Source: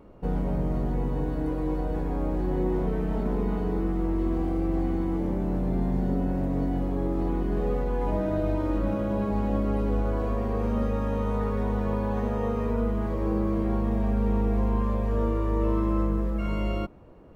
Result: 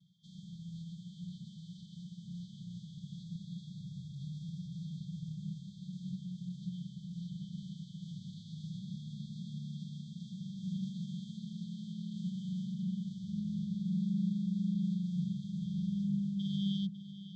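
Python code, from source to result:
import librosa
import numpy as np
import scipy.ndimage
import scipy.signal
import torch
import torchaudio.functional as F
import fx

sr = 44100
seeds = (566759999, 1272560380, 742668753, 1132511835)

y = fx.vocoder_glide(x, sr, note=59, semitones=-4)
y = fx.brickwall_bandstop(y, sr, low_hz=170.0, high_hz=3100.0)
y = y + 10.0 ** (-13.0 / 20.0) * np.pad(y, (int(550 * sr / 1000.0), 0))[:len(y)]
y = F.gain(torch.from_numpy(y), 17.0).numpy()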